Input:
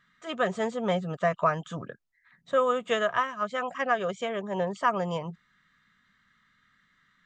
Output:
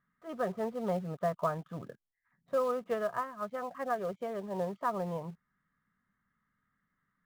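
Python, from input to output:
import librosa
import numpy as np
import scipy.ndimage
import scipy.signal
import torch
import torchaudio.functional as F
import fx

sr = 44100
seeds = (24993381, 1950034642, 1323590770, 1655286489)

p1 = scipy.signal.sosfilt(scipy.signal.butter(2, 1100.0, 'lowpass', fs=sr, output='sos'), x)
p2 = fx.quant_companded(p1, sr, bits=4)
p3 = p1 + (p2 * librosa.db_to_amplitude(-10.0))
y = p3 * librosa.db_to_amplitude(-7.5)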